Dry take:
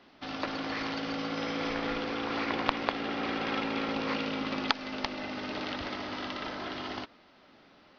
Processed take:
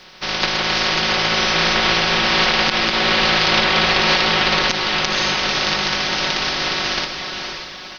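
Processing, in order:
ceiling on every frequency bin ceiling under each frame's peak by 24 dB
comb filter 5.4 ms, depth 62%
feedback delay with all-pass diffusion 542 ms, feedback 41%, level −6 dB
boost into a limiter +16 dB
level −2 dB

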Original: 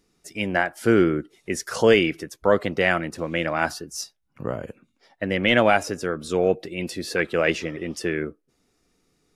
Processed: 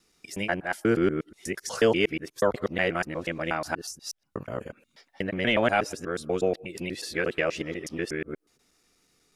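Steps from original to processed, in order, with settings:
reversed piece by piece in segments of 121 ms
one half of a high-frequency compander encoder only
level −5 dB

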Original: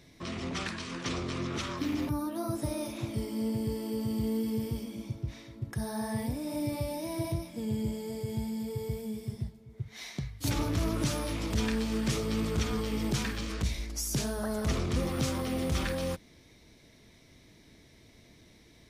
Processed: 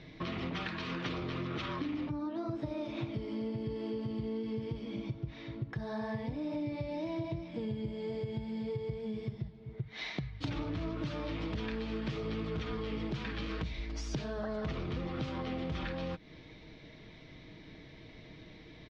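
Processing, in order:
low-pass filter 3,900 Hz 24 dB per octave
comb filter 6.4 ms, depth 37%
downward compressor 6 to 1, threshold −40 dBFS, peak gain reduction 15 dB
level +5.5 dB

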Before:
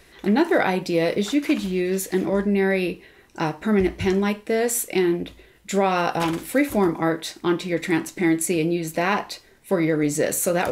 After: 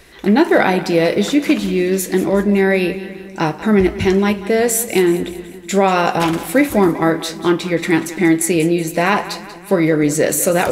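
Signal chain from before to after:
echo with a time of its own for lows and highs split 300 Hz, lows 291 ms, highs 187 ms, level −15 dB
level +6.5 dB

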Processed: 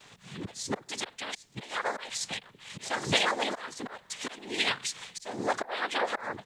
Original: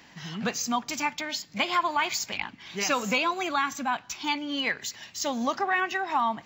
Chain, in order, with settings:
comb filter 1.4 ms, depth 47%
volume swells 350 ms
cochlear-implant simulation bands 6
background noise pink −74 dBFS

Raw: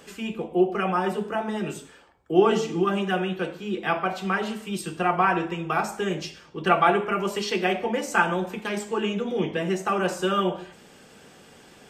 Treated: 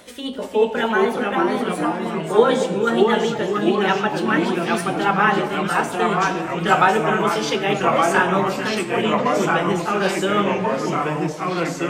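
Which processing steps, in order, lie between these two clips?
pitch glide at a constant tempo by +3.5 semitones ending unshifted
delay with pitch and tempo change per echo 333 ms, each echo −2 semitones, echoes 3
echo through a band-pass that steps 226 ms, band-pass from 640 Hz, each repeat 1.4 octaves, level −9 dB
level +4.5 dB

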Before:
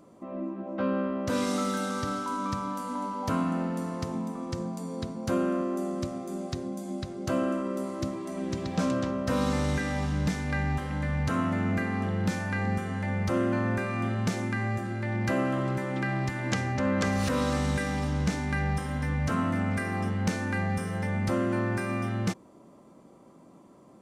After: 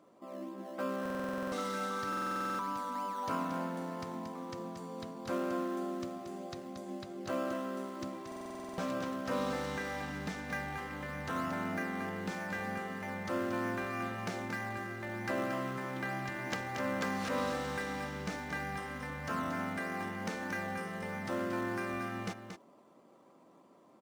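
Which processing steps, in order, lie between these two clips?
high-pass filter 620 Hz 6 dB per octave
high-shelf EQ 5,500 Hz −11 dB
in parallel at −11 dB: sample-and-hold swept by an LFO 15×, swing 60% 3.2 Hz
on the sum: single-tap delay 229 ms −7.5 dB
buffer that repeats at 0:01.01/0:02.08/0:08.27, samples 2,048, times 10
level −4 dB

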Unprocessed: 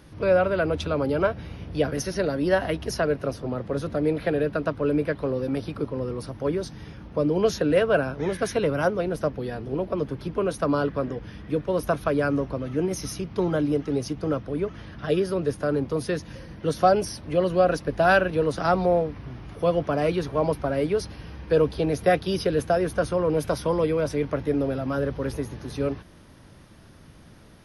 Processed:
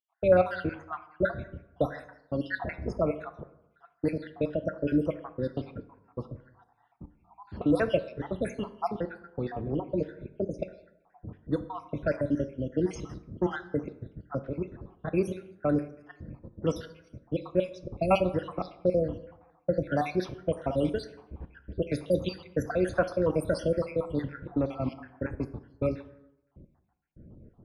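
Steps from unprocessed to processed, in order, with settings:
time-frequency cells dropped at random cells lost 71%
dynamic equaliser 430 Hz, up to −7 dB, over −41 dBFS, Q 4.7
low-pass that shuts in the quiet parts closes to 400 Hz, open at −23 dBFS
dense smooth reverb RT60 0.87 s, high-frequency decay 0.55×, DRR 10.5 dB

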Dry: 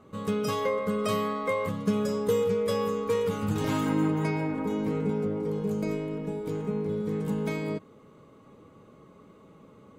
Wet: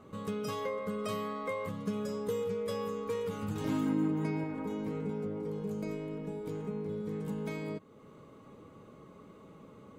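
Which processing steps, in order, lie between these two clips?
0:03.65–0:04.44: parametric band 250 Hz +9 dB 1.1 octaves
downward compressor 1.5 to 1, threshold −47 dBFS, peak gain reduction 11 dB

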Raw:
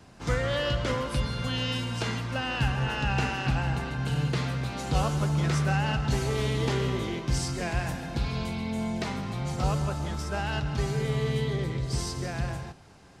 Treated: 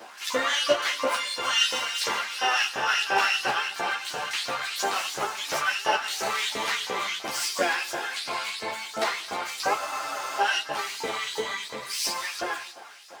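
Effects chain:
running median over 3 samples
high-shelf EQ 9,500 Hz +2.5 dB
in parallel at +2 dB: downward compressor 20 to 1, threshold −34 dBFS, peak gain reduction 15.5 dB
on the sum: auto-filter high-pass saw up 2.9 Hz 520–6,000 Hz
pitch-shifted copies added −12 semitones −12 dB, −7 semitones −16 dB, +12 semitones −9 dB
on a send at −14 dB: convolution reverb RT60 0.90 s, pre-delay 4 ms
on the sum: frozen spectrum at 0:09.79, 0.61 s
string-ensemble chorus
level +4.5 dB

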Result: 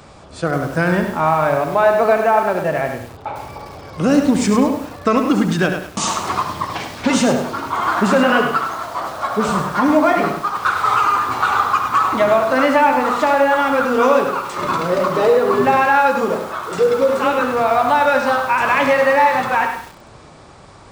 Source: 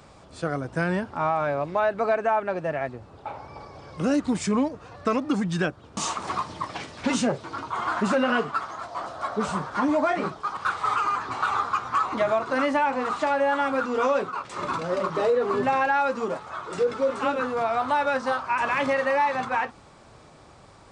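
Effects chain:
feedback echo with a low-pass in the loop 69 ms, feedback 36%, low-pass 3,900 Hz, level −9 dB
feedback echo at a low word length 102 ms, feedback 35%, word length 7 bits, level −7 dB
level +8 dB

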